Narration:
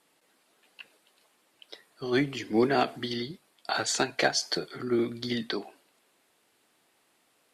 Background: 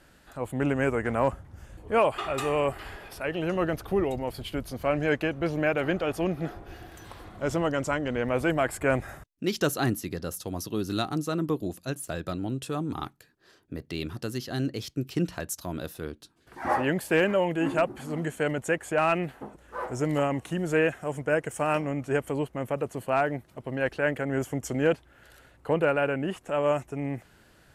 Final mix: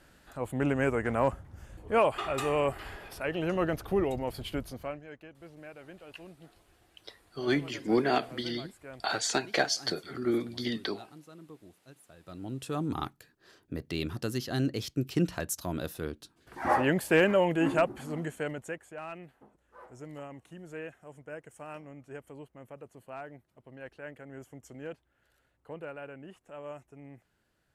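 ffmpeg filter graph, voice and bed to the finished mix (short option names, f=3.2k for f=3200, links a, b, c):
-filter_complex "[0:a]adelay=5350,volume=-2dB[a];[1:a]volume=20dB,afade=t=out:st=4.56:d=0.45:silence=0.1,afade=t=in:st=12.21:d=0.71:silence=0.0794328,afade=t=out:st=17.65:d=1.25:silence=0.133352[b];[a][b]amix=inputs=2:normalize=0"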